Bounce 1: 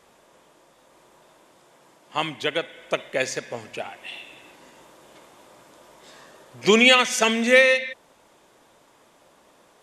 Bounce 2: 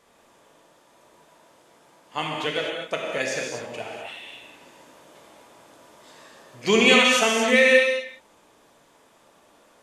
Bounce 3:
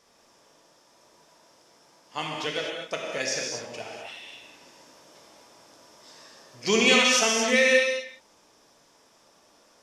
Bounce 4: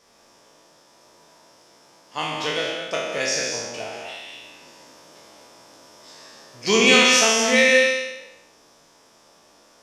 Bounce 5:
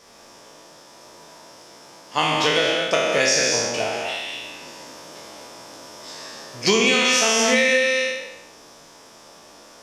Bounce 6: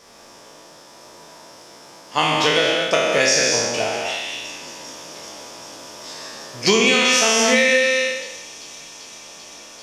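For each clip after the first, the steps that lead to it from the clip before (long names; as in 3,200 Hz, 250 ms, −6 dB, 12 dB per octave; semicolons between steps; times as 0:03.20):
reverb whose tail is shaped and stops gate 280 ms flat, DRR −1.5 dB; level −4 dB
parametric band 5,400 Hz +14.5 dB 0.44 octaves; level −4 dB
peak hold with a decay on every bin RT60 0.91 s; level +2.5 dB
downward compressor 16 to 1, threshold −22 dBFS, peak gain reduction 13 dB; level +8 dB
delay with a high-pass on its return 391 ms, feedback 85%, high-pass 4,600 Hz, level −16.5 dB; level +2 dB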